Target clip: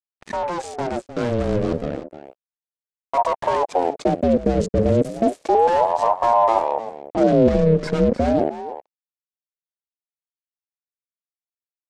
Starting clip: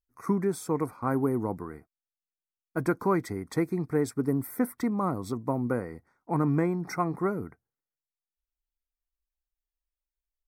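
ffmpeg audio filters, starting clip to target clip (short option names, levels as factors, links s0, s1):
-filter_complex "[0:a]asoftclip=type=hard:threshold=0.0398,acrusher=bits=5:mix=0:aa=0.5,asetrate=38808,aresample=44100,lowpass=f=7800:w=0.5412,lowpass=f=7800:w=1.3066,asplit=2[s0][s1];[s1]aecho=0:1:307:0.224[s2];[s0][s2]amix=inputs=2:normalize=0,asubboost=boost=8:cutoff=210,aeval=exprs='val(0)*sin(2*PI*570*n/s+570*0.45/0.32*sin(2*PI*0.32*n/s))':c=same,volume=2.51"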